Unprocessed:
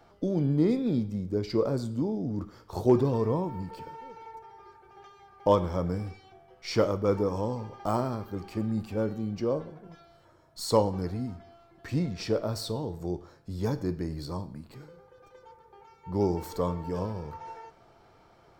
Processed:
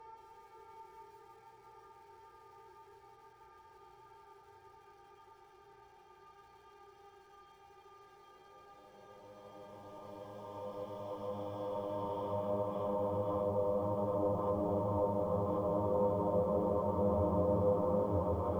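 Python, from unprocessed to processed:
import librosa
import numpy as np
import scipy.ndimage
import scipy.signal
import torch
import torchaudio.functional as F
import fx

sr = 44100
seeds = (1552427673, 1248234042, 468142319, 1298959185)

y = fx.paulstretch(x, sr, seeds[0], factor=16.0, window_s=1.0, from_s=4.5)
y = fx.env_lowpass_down(y, sr, base_hz=920.0, full_db=-23.0)
y = fx.echo_crushed(y, sr, ms=167, feedback_pct=80, bits=9, wet_db=-12.5)
y = F.gain(torch.from_numpy(y), -7.0).numpy()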